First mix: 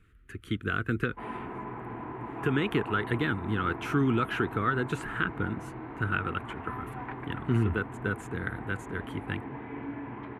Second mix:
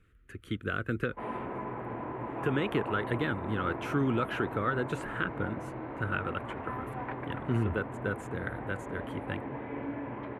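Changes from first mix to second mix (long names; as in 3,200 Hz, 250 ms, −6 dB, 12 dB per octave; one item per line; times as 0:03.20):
speech −3.5 dB
master: add parametric band 560 Hz +15 dB 0.28 octaves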